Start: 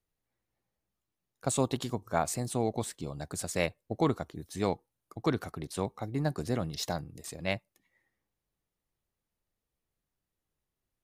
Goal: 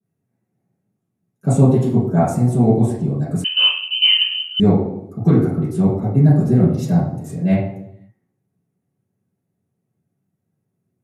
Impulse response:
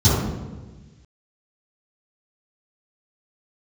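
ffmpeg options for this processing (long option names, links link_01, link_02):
-filter_complex "[1:a]atrim=start_sample=2205,asetrate=79380,aresample=44100[link_01];[0:a][link_01]afir=irnorm=-1:irlink=0,asettb=1/sr,asplit=3[link_02][link_03][link_04];[link_02]atrim=end=3.444[link_05];[link_03]atrim=start=3.44:end=4.6,asetpts=PTS-STARTPTS,afade=type=in:duration=0.004:curve=qsin,afade=type=out:start_time=1.156:duration=0.004:curve=qsin,lowpass=frequency=2700:width_type=q:width=0.5098,lowpass=frequency=2700:width_type=q:width=0.6013,lowpass=frequency=2700:width_type=q:width=0.9,lowpass=frequency=2700:width_type=q:width=2.563,afreqshift=-3200[link_06];[link_04]atrim=start=4.596[link_07];[link_05][link_06]acrossfade=duration=0.004:curve1=hsin:curve2=qsin[link_08];[link_08][link_07]acrossfade=duration=0.004:curve1=qsin:curve2=hsin,adynamicequalizer=threshold=0.224:dfrequency=2200:dqfactor=0.7:tfrequency=2200:tqfactor=0.7:attack=5:release=100:ratio=0.375:range=2:mode=cutabove:tftype=highshelf,volume=-13.5dB"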